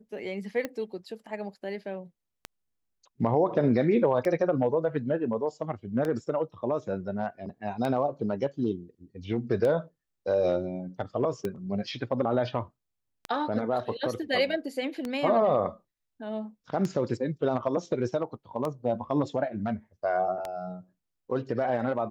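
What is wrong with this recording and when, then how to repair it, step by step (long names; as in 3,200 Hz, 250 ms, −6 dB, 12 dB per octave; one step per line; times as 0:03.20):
scratch tick 33 1/3 rpm −18 dBFS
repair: click removal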